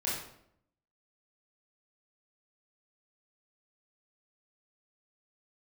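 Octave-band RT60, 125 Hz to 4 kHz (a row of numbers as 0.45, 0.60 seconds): 0.90, 0.85, 0.75, 0.65, 0.60, 0.50 seconds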